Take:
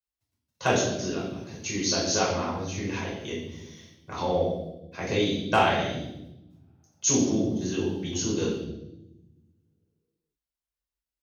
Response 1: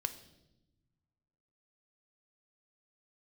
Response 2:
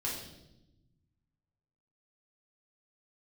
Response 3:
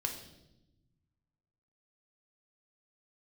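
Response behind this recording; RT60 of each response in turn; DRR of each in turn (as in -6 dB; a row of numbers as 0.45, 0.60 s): 2; not exponential, 0.90 s, 0.95 s; 9.5, -5.5, 2.5 dB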